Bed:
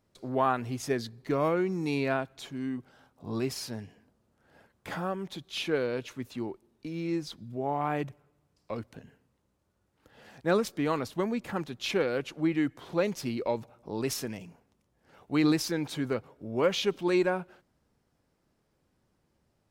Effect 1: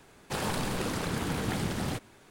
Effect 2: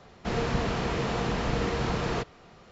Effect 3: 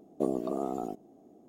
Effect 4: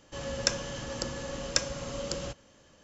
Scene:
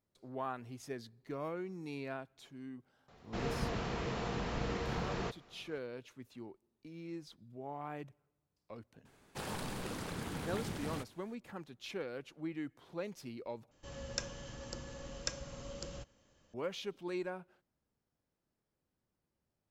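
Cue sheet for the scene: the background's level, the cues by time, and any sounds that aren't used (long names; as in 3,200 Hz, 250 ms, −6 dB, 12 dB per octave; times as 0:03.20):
bed −13.5 dB
0:03.08: mix in 2 −9 dB
0:09.05: mix in 1 −9.5 dB
0:13.71: overwrite with 4 −11.5 dB + low-shelf EQ 110 Hz +7 dB
not used: 3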